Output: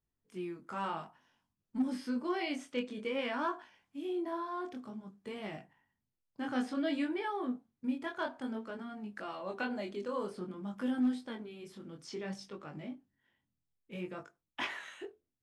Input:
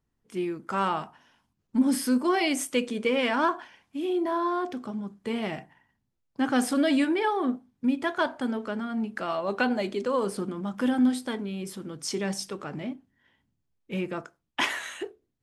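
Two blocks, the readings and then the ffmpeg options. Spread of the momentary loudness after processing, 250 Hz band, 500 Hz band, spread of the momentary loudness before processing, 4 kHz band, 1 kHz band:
14 LU, −10.0 dB, −10.0 dB, 13 LU, −11.5 dB, −10.5 dB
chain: -filter_complex "[0:a]acrossover=split=5400[link_01][link_02];[link_02]acompressor=threshold=-56dB:ratio=6[link_03];[link_01][link_03]amix=inputs=2:normalize=0,flanger=delay=19.5:depth=5.1:speed=0.55,asoftclip=type=hard:threshold=-17dB,volume=-7.5dB"

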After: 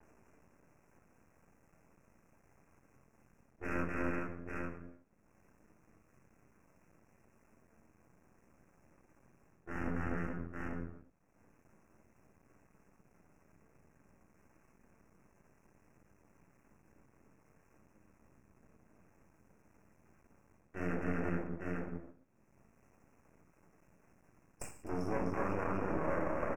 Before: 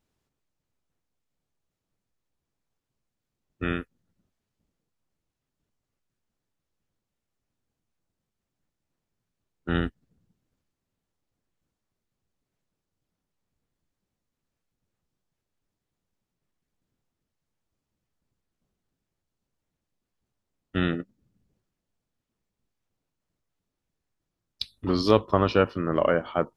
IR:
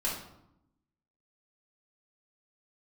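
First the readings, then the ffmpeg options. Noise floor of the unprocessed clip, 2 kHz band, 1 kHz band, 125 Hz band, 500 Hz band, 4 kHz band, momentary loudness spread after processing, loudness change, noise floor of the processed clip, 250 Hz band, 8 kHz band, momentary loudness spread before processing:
−85 dBFS, −7.0 dB, −9.5 dB, −9.5 dB, −12.5 dB, below −25 dB, 14 LU, −13.5 dB, −71 dBFS, −9.0 dB, can't be measured, 14 LU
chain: -filter_complex "[0:a]highpass=frequency=110:poles=1,asplit=2[link_01][link_02];[link_02]aecho=0:1:252|425|848:0.596|0.2|0.15[link_03];[link_01][link_03]amix=inputs=2:normalize=0,aeval=exprs='0.668*sin(PI/2*1.78*val(0)/0.668)':channel_layout=same,highshelf=frequency=4800:gain=-12,areverse,acompressor=threshold=-29dB:ratio=8,areverse[link_04];[1:a]atrim=start_sample=2205,afade=type=out:start_time=0.43:duration=0.01,atrim=end_sample=19404[link_05];[link_04][link_05]afir=irnorm=-1:irlink=0,aeval=exprs='max(val(0),0)':channel_layout=same,asuperstop=centerf=3800:order=12:qfactor=1.4,acompressor=mode=upward:threshold=-47dB:ratio=2.5,adynamicequalizer=threshold=0.00251:dfrequency=2800:dqfactor=0.7:tfrequency=2800:tqfactor=0.7:attack=5:release=100:ratio=0.375:range=2.5:mode=cutabove:tftype=highshelf,volume=-5dB"

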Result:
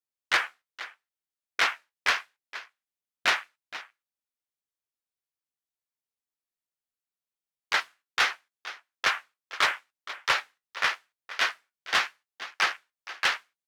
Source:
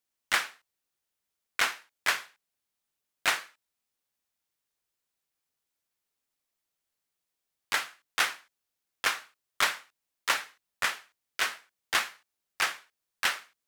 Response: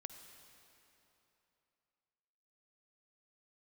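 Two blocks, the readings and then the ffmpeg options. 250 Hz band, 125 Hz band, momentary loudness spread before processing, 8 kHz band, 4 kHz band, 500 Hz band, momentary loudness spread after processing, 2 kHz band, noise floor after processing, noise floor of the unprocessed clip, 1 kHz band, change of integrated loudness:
+0.5 dB, can't be measured, 12 LU, −3.5 dB, +2.5 dB, +3.0 dB, 16 LU, +3.0 dB, below −85 dBFS, −85 dBFS, +3.5 dB, +2.5 dB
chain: -filter_complex "[0:a]afwtdn=0.0141,asplit=2[link_01][link_02];[link_02]aecho=0:1:470:0.141[link_03];[link_01][link_03]amix=inputs=2:normalize=0,flanger=delay=6.4:depth=9.2:regen=-53:speed=0.8:shape=triangular,asoftclip=type=tanh:threshold=-23dB,volume=9dB"

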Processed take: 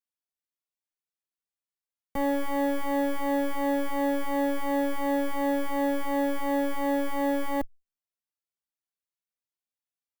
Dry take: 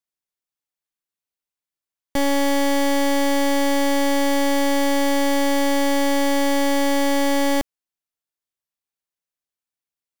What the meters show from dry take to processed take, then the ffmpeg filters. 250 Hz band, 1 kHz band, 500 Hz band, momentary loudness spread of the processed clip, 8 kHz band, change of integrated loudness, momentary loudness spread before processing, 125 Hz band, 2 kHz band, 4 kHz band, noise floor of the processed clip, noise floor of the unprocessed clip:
−7.5 dB, −7.0 dB, −7.0 dB, 1 LU, −18.0 dB, −8.0 dB, 1 LU, can't be measured, −10.5 dB, −18.0 dB, below −85 dBFS, below −85 dBFS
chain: -filter_complex "[0:a]acrossover=split=1200[link_01][link_02];[link_02]aeval=exprs='(mod(11.2*val(0)+1,2)-1)/11.2':channel_layout=same[link_03];[link_01][link_03]amix=inputs=2:normalize=0,asplit=2[link_04][link_05];[link_05]adelay=2.2,afreqshift=2.8[link_06];[link_04][link_06]amix=inputs=2:normalize=1,volume=-5dB"

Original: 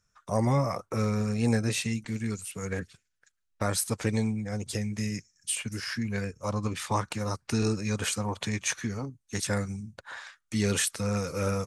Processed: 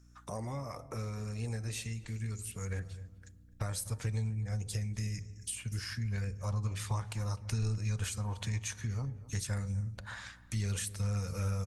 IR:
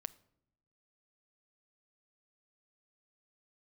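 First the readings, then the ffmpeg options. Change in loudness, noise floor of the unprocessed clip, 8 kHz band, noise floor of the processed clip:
−7.0 dB, −78 dBFS, −8.0 dB, −57 dBFS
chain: -filter_complex "[0:a]bandreject=frequency=83.57:width_type=h:width=4,bandreject=frequency=167.14:width_type=h:width=4,bandreject=frequency=250.71:width_type=h:width=4,bandreject=frequency=334.28:width_type=h:width=4,bandreject=frequency=417.85:width_type=h:width=4,bandreject=frequency=501.42:width_type=h:width=4,bandreject=frequency=584.99:width_type=h:width=4,bandreject=frequency=668.56:width_type=h:width=4,bandreject=frequency=752.13:width_type=h:width=4,bandreject=frequency=835.7:width_type=h:width=4,bandreject=frequency=919.27:width_type=h:width=4,asplit=2[link_01][link_02];[1:a]atrim=start_sample=2205,highshelf=frequency=5500:gain=7.5[link_03];[link_02][link_03]afir=irnorm=-1:irlink=0,volume=9.5dB[link_04];[link_01][link_04]amix=inputs=2:normalize=0,acompressor=threshold=-35dB:ratio=2.5,asplit=2[link_05][link_06];[link_06]adelay=254,lowpass=frequency=1500:poles=1,volume=-17dB,asplit=2[link_07][link_08];[link_08]adelay=254,lowpass=frequency=1500:poles=1,volume=0.35,asplit=2[link_09][link_10];[link_10]adelay=254,lowpass=frequency=1500:poles=1,volume=0.35[link_11];[link_05][link_07][link_09][link_11]amix=inputs=4:normalize=0,asubboost=boost=11.5:cutoff=82,aeval=exprs='val(0)+0.00316*(sin(2*PI*60*n/s)+sin(2*PI*2*60*n/s)/2+sin(2*PI*3*60*n/s)/3+sin(2*PI*4*60*n/s)/4+sin(2*PI*5*60*n/s)/5)':channel_layout=same,volume=-8.5dB" -ar 48000 -c:a libopus -b:a 48k

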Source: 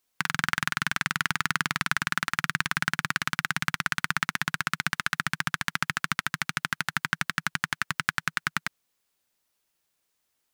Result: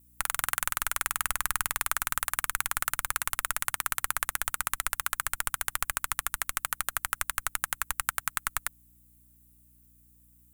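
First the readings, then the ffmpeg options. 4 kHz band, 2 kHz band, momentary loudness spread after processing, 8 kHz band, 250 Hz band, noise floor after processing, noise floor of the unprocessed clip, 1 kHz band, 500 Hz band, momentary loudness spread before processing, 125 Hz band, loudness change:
−6.0 dB, −6.5 dB, 3 LU, +7.0 dB, −19.0 dB, −61 dBFS, −77 dBFS, −2.5 dB, 0.0 dB, 3 LU, −11.5 dB, −1.5 dB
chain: -af "aexciter=amount=5.9:drive=7.7:freq=7500,afreqshift=-160,aeval=exprs='val(0)+0.00141*(sin(2*PI*60*n/s)+sin(2*PI*2*60*n/s)/2+sin(2*PI*3*60*n/s)/3+sin(2*PI*4*60*n/s)/4+sin(2*PI*5*60*n/s)/5)':channel_layout=same,volume=-5dB"

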